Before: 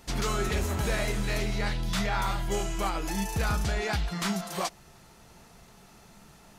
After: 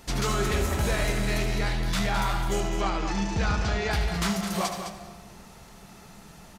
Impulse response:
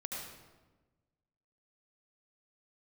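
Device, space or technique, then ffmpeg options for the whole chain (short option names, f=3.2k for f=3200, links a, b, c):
saturated reverb return: -filter_complex "[0:a]asplit=2[a][b];[1:a]atrim=start_sample=2205[c];[b][c]afir=irnorm=-1:irlink=0,asoftclip=type=tanh:threshold=-32dB,volume=-2dB[d];[a][d]amix=inputs=2:normalize=0,asettb=1/sr,asplit=3[e][f][g];[e]atrim=end=2.604[h];[f]atrim=start=2.6:end=3.91,asetpts=PTS-STARTPTS,afade=t=in:d=0.004:c=qsin,afade=t=out:st=1.306:d=0.004:c=qsin,lowpass=f=6.2k:w=0.5412,lowpass=f=6.2k:w=1.3066[i];[g]atrim=start=3.906[j];[h][i]acrossfade=d=0.004:c1=hsin:c2=qsin[k];[k][j]acrossfade=d=0.004:c1=qsin:c2=hsin,aecho=1:1:75.8|209.9:0.282|0.355"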